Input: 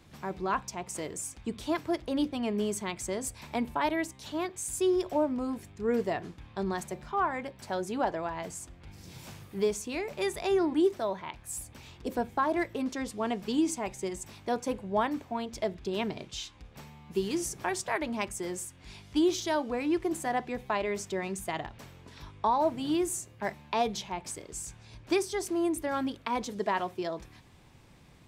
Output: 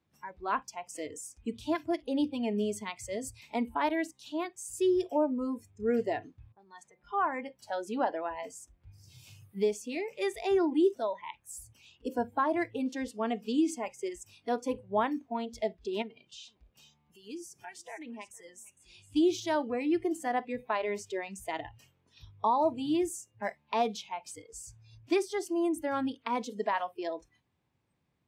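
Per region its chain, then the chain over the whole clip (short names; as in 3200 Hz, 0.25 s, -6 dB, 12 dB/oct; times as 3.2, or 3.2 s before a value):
6.52–7.04 low-pass opened by the level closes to 660 Hz, open at -27.5 dBFS + low shelf 190 Hz -10.5 dB + compressor 2:1, threshold -45 dBFS
16.02–19.16 compressor 2:1, threshold -44 dBFS + echo 0.458 s -12.5 dB
whole clip: HPF 70 Hz; spectral noise reduction 20 dB; high shelf 4100 Hz -7.5 dB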